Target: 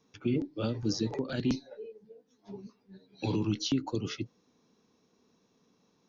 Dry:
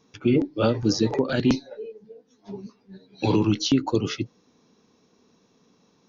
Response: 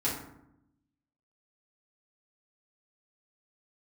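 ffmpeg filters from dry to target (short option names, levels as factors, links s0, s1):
-filter_complex "[0:a]acrossover=split=310|3000[s0][s1][s2];[s1]acompressor=threshold=0.0398:ratio=6[s3];[s0][s3][s2]amix=inputs=3:normalize=0,volume=0.422"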